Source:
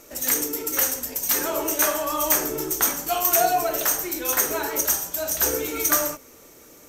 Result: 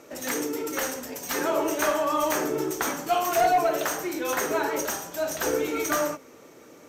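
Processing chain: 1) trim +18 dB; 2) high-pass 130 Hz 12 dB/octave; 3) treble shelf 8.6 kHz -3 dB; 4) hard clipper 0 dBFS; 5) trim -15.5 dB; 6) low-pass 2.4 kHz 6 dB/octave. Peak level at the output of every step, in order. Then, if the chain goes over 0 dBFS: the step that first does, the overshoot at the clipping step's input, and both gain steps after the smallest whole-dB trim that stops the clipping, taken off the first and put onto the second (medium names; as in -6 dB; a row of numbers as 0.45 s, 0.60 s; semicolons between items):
+9.5 dBFS, +10.0 dBFS, +9.0 dBFS, 0.0 dBFS, -15.5 dBFS, -15.5 dBFS; step 1, 9.0 dB; step 1 +9 dB, step 5 -6.5 dB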